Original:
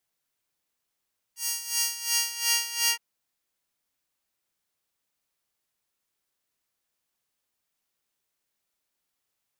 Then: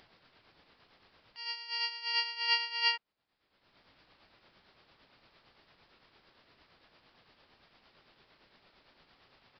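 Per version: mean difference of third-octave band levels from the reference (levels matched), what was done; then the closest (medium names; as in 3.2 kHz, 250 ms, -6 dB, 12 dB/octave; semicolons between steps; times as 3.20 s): 10.0 dB: treble shelf 2 kHz -7 dB; in parallel at -1 dB: upward compressor, threshold -34 dBFS; on the sum: tremolo triangle 8.8 Hz, depth 55%; resampled via 11.025 kHz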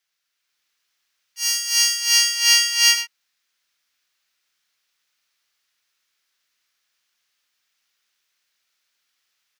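3.0 dB: bass shelf 440 Hz -7.5 dB; on a send: delay 95 ms -10 dB; on the sum: level rider gain up to 5 dB; high-order bell 2.8 kHz +10 dB 2.6 oct; trim -2.5 dB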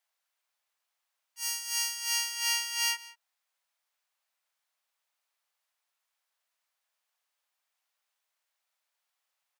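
2.0 dB: high-pass 630 Hz 24 dB/octave; treble shelf 4.9 kHz -7.5 dB; compression 2:1, threshold -29 dBFS, peak gain reduction 4 dB; echo from a far wall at 31 m, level -18 dB; trim +2.5 dB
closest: third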